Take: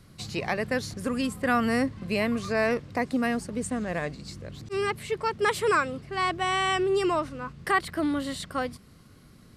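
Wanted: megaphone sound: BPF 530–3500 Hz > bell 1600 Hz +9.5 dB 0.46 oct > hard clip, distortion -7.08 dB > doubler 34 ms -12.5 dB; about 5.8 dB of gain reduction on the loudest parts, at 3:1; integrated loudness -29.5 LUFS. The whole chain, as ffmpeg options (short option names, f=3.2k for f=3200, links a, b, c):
-filter_complex "[0:a]acompressor=threshold=-27dB:ratio=3,highpass=530,lowpass=3.5k,equalizer=f=1.6k:t=o:w=0.46:g=9.5,asoftclip=type=hard:threshold=-29dB,asplit=2[a][b];[b]adelay=34,volume=-12.5dB[c];[a][c]amix=inputs=2:normalize=0,volume=5dB"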